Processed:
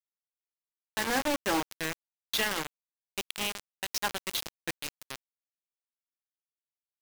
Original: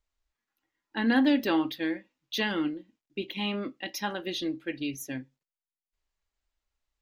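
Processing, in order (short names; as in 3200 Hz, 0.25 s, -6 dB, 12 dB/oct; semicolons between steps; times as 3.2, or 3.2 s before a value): treble ducked by the level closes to 1400 Hz, closed at -21.5 dBFS; graphic EQ 125/250/8000 Hz -8/-11/+6 dB; bit-crush 5-bit; gain +1.5 dB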